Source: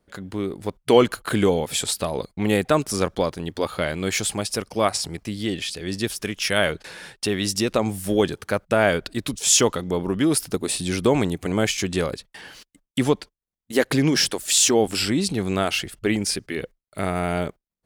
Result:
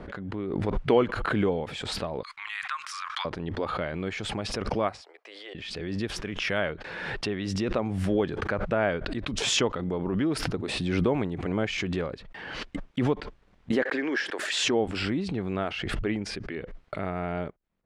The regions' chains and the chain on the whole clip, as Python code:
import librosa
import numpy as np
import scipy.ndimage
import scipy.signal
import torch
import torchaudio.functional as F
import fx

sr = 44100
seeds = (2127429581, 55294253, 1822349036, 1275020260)

y = fx.chain(x, sr, fx.ellip_highpass(hz=1100.0, order=4, stop_db=50),
    fx.high_shelf(hz=4600.0, db=5.0), at=(2.23, 3.25))
y = fx.chain(y, sr, fx.steep_highpass(hz=460.0, slope=36),
    fx.upward_expand(threshold_db=-52.0, expansion=2.5), at=(5.01, 5.55))
y = fx.chain(y, sr, fx.highpass(hz=310.0, slope=24),
    fx.peak_eq(hz=1700.0, db=9.5, octaves=0.58), at=(13.82, 14.64))
y = scipy.signal.sosfilt(scipy.signal.butter(2, 2300.0, 'lowpass', fs=sr, output='sos'), y)
y = fx.pre_swell(y, sr, db_per_s=28.0)
y = y * librosa.db_to_amplitude(-7.0)